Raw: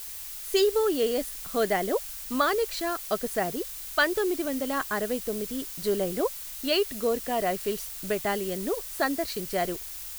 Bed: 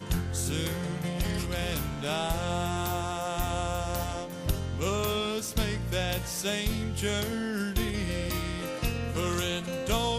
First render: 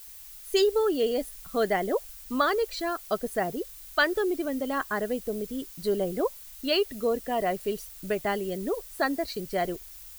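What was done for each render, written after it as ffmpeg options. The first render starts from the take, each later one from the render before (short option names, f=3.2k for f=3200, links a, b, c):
-af "afftdn=nr=9:nf=-39"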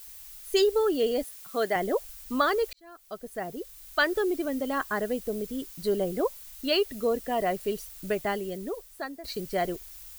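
-filter_complex "[0:a]asettb=1/sr,asplit=3[a][b][c];[a]atrim=end=1.234[d];[b]atrim=start=1.23:end=1.76,asetpts=PTS-STARTPTS,afade=t=in:d=0.004:c=qsin,afade=t=out:st=0.526:d=0.004:c=qsin,highpass=f=370:p=1[e];[c]atrim=start=1.756[f];[d][e]acrossfade=d=0.004:c1=hsin:c2=qsin[g];[g][f]acrossfade=d=0.004:c1=qsin:c2=hsin,asplit=3[h][i][j];[h]atrim=end=2.73,asetpts=PTS-STARTPTS,afade=t=out:st=2.726:d=0.004:c=hsin[k];[i]atrim=start=2.73:end=9.24,asetpts=PTS-STARTPTS,afade=t=in:d=1.43,afade=t=out:st=5.41:d=1.1:silence=0.188365[l];[j]atrim=start=9.24,asetpts=PTS-STARTPTS,afade=t=in:d=0.004:c=hsin:silence=0.188365[m];[k][l][m]concat=n=3:v=0:a=1"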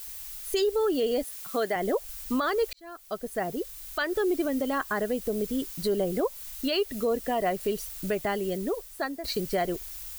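-filter_complex "[0:a]asplit=2[a][b];[b]acompressor=threshold=-32dB:ratio=6,volume=-1dB[c];[a][c]amix=inputs=2:normalize=0,alimiter=limit=-18dB:level=0:latency=1:release=144"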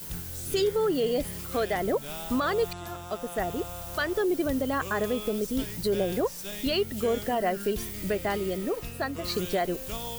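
-filter_complex "[1:a]volume=-9.5dB[a];[0:a][a]amix=inputs=2:normalize=0"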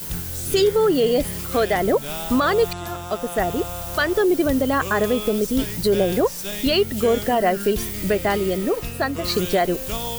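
-af "volume=8dB"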